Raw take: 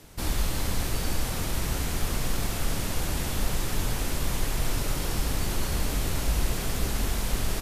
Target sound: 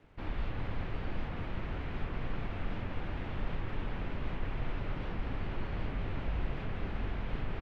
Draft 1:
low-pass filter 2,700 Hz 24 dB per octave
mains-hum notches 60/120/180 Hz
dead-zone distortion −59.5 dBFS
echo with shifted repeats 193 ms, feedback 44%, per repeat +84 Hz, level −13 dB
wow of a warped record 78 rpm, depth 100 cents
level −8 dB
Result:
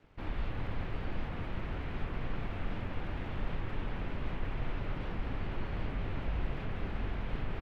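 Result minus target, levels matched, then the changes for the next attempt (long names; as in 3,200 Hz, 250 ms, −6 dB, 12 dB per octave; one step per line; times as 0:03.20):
dead-zone distortion: distortion +7 dB
change: dead-zone distortion −66.5 dBFS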